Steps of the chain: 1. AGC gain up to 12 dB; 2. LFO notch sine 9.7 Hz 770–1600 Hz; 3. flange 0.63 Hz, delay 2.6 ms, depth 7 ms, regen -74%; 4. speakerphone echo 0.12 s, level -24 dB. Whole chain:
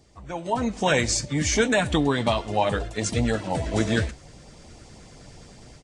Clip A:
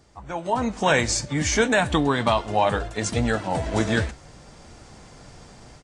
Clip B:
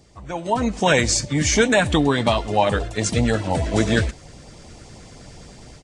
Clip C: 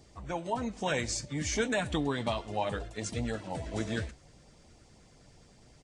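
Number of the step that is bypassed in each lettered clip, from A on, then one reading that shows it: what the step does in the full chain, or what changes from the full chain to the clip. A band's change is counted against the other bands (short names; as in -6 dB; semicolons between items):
2, 1 kHz band +3.5 dB; 3, loudness change +4.5 LU; 1, loudness change -9.5 LU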